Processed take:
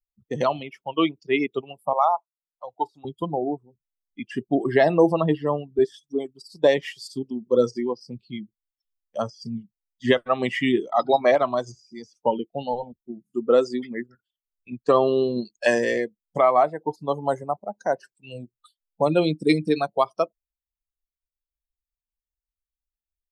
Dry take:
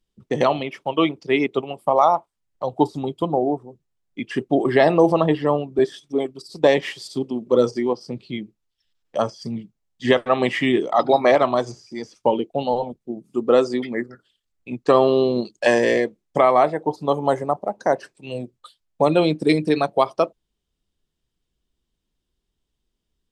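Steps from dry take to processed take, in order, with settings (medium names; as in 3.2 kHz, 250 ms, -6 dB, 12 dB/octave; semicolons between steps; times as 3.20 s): expander on every frequency bin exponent 1.5; 1.93–3.05 s: three-band isolator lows -24 dB, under 550 Hz, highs -14 dB, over 3.3 kHz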